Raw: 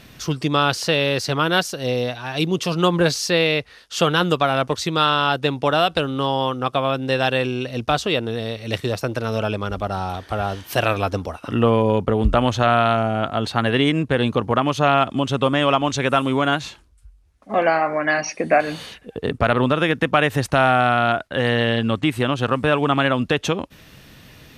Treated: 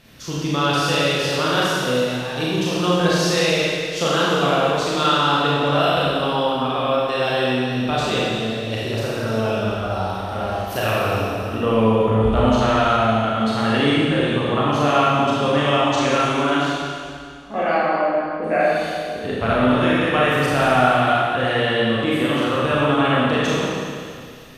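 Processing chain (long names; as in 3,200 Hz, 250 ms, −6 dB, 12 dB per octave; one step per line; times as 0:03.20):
0:17.78–0:18.44: Butterworth low-pass 1,300 Hz 48 dB per octave
four-comb reverb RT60 2.2 s, combs from 28 ms, DRR −7.5 dB
level −7 dB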